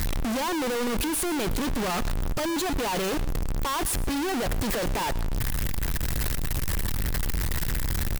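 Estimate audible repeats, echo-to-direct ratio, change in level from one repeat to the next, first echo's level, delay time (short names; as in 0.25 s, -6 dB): 2, -18.0 dB, no steady repeat, -21.0 dB, 0.112 s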